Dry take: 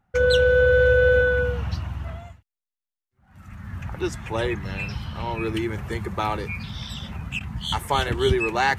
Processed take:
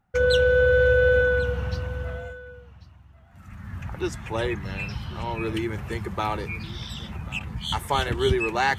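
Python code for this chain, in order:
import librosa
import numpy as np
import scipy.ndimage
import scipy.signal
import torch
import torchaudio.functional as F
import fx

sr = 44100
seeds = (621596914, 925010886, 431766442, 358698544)

y = x + 10.0 ** (-19.0 / 20.0) * np.pad(x, (int(1091 * sr / 1000.0), 0))[:len(x)]
y = F.gain(torch.from_numpy(y), -1.5).numpy()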